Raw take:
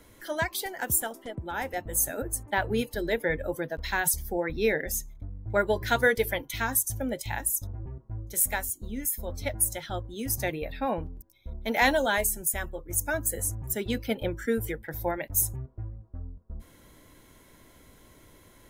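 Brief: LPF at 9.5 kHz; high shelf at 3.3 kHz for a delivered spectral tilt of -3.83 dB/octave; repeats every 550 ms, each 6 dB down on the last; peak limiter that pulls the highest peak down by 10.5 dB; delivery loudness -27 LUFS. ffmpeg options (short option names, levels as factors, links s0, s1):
-af "lowpass=9500,highshelf=f=3300:g=3,alimiter=limit=0.1:level=0:latency=1,aecho=1:1:550|1100|1650|2200|2750|3300:0.501|0.251|0.125|0.0626|0.0313|0.0157,volume=1.58"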